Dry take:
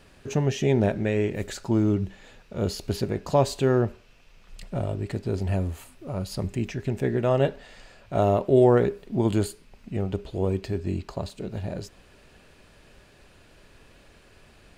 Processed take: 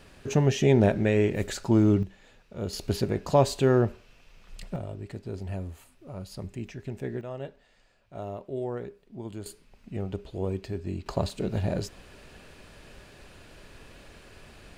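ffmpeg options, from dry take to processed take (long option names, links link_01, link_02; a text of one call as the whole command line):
ffmpeg -i in.wav -af "asetnsamples=nb_out_samples=441:pad=0,asendcmd='2.03 volume volume -6.5dB;2.73 volume volume 0dB;4.76 volume volume -8.5dB;7.21 volume volume -15.5dB;9.46 volume volume -5dB;11.06 volume volume 4dB',volume=1.5dB" out.wav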